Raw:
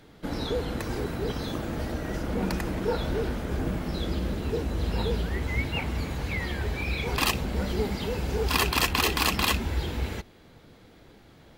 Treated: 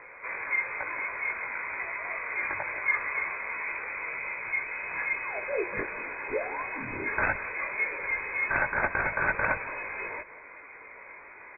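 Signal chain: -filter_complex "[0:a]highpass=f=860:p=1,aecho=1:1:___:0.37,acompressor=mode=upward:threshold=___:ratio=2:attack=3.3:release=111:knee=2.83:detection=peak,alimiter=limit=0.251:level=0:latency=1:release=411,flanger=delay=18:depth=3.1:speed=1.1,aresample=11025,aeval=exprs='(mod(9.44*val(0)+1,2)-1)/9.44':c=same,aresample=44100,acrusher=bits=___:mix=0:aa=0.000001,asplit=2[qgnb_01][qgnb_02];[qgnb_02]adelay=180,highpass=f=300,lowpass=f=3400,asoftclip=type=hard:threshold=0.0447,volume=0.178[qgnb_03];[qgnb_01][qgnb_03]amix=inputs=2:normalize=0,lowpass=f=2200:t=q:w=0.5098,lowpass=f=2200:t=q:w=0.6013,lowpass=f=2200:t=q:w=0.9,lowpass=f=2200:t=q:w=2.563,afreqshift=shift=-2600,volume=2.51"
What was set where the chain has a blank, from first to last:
1.9, 0.0126, 11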